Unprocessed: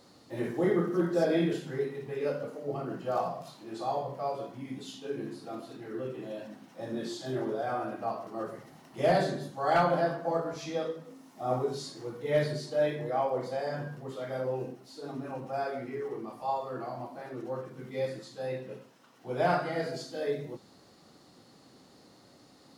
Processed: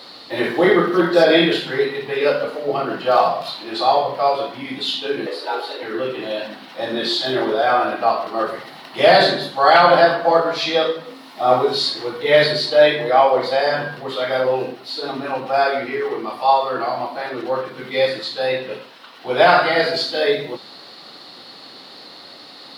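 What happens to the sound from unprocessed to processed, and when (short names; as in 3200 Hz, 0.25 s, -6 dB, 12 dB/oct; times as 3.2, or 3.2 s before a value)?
5.26–5.83 frequency shift +150 Hz
whole clip: HPF 920 Hz 6 dB/oct; resonant high shelf 5200 Hz -8 dB, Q 3; maximiser +21.5 dB; gain -1 dB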